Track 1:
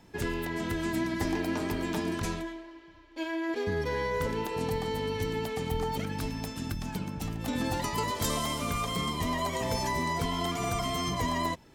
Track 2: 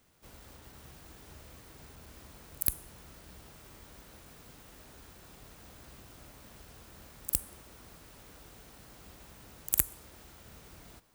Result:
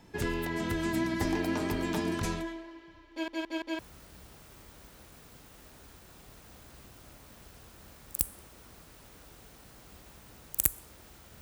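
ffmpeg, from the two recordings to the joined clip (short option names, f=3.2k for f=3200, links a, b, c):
-filter_complex "[0:a]apad=whole_dur=11.41,atrim=end=11.41,asplit=4[a][b][c][d];[a]atrim=end=3.282[e];[b]atrim=start=3.108:end=3.282[f];[c]atrim=start=3.108:end=3.282[g];[d]atrim=start=3.108:end=3.282[h];[1:a]atrim=start=2.928:end=10.55[i];[e][f]acrossfade=d=0.004:c1=hsin:c2=hsin[j];[j][g]acrossfade=d=0.004:c1=hsin:c2=hsin[k];[k][h]acrossfade=d=0.004:c1=hsin:c2=hsin[l];[l][i]acrossfade=d=0.004:c1=hsin:c2=hsin"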